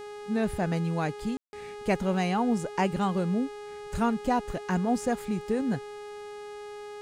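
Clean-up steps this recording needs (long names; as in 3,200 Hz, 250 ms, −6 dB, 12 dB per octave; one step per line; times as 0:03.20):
hum removal 414.7 Hz, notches 27
ambience match 0:01.37–0:01.53
downward expander −33 dBFS, range −21 dB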